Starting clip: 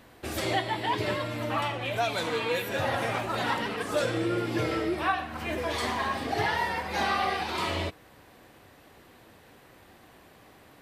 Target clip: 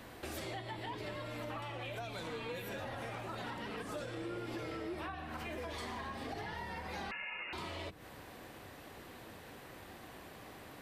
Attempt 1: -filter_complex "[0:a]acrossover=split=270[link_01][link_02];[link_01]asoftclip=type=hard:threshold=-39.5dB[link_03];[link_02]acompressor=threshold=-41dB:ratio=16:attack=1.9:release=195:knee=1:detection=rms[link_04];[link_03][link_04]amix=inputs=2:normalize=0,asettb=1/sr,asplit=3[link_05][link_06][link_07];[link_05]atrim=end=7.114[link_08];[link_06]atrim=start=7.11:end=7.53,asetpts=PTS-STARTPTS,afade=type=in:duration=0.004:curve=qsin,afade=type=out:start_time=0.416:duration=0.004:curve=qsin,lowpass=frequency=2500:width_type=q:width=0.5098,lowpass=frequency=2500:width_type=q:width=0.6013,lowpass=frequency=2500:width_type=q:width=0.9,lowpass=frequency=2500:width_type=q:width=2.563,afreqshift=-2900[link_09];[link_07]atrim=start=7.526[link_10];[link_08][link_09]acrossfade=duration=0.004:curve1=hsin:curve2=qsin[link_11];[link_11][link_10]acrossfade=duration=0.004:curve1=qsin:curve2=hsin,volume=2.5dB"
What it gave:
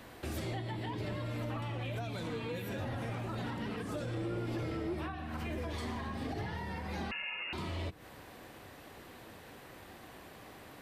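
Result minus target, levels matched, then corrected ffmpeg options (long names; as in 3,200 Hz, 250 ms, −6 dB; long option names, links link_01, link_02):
hard clipping: distortion −5 dB
-filter_complex "[0:a]acrossover=split=270[link_01][link_02];[link_01]asoftclip=type=hard:threshold=-51dB[link_03];[link_02]acompressor=threshold=-41dB:ratio=16:attack=1.9:release=195:knee=1:detection=rms[link_04];[link_03][link_04]amix=inputs=2:normalize=0,asettb=1/sr,asplit=3[link_05][link_06][link_07];[link_05]atrim=end=7.114[link_08];[link_06]atrim=start=7.11:end=7.53,asetpts=PTS-STARTPTS,afade=type=in:duration=0.004:curve=qsin,afade=type=out:start_time=0.416:duration=0.004:curve=qsin,lowpass=frequency=2500:width_type=q:width=0.5098,lowpass=frequency=2500:width_type=q:width=0.6013,lowpass=frequency=2500:width_type=q:width=0.9,lowpass=frequency=2500:width_type=q:width=2.563,afreqshift=-2900[link_09];[link_07]atrim=start=7.526[link_10];[link_08][link_09]acrossfade=duration=0.004:curve1=hsin:curve2=qsin[link_11];[link_11][link_10]acrossfade=duration=0.004:curve1=qsin:curve2=hsin,volume=2.5dB"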